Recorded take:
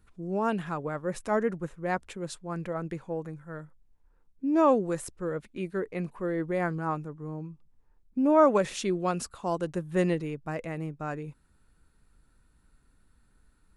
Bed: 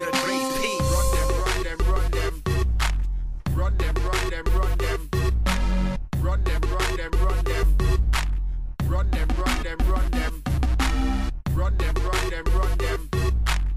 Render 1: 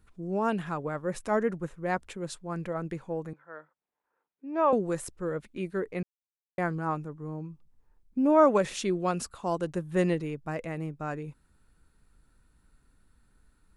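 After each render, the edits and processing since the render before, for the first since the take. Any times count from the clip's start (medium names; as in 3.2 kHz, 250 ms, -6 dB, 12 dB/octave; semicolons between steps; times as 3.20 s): 3.33–4.73 s: band-pass 530–2600 Hz; 6.03–6.58 s: mute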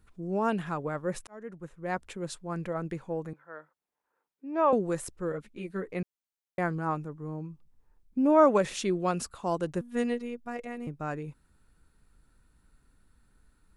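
1.27–2.17 s: fade in; 5.32–5.90 s: three-phase chorus; 9.81–10.87 s: robot voice 240 Hz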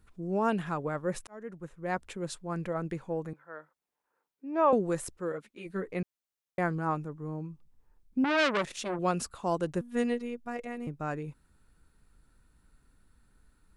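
5.16–5.65 s: high-pass 200 Hz -> 550 Hz 6 dB/octave; 8.24–8.99 s: transformer saturation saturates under 2.6 kHz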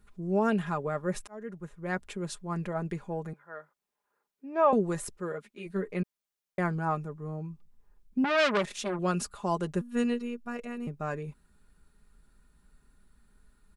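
comb 4.9 ms, depth 52%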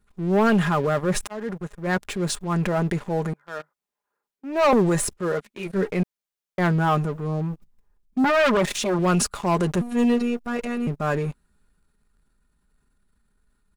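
waveshaping leveller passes 3; transient shaper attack -4 dB, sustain +4 dB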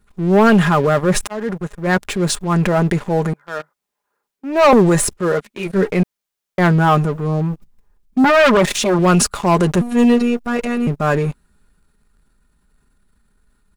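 trim +7.5 dB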